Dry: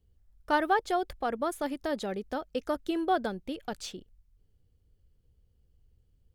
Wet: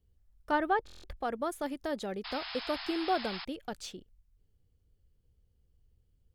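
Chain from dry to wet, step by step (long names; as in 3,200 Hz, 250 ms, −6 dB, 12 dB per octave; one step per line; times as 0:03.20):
0:00.51–0:01.17: bass and treble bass +5 dB, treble −10 dB
0:02.24–0:03.45: sound drawn into the spectrogram noise 660–5,300 Hz −39 dBFS
buffer that repeats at 0:00.85, samples 1,024, times 7
level −3 dB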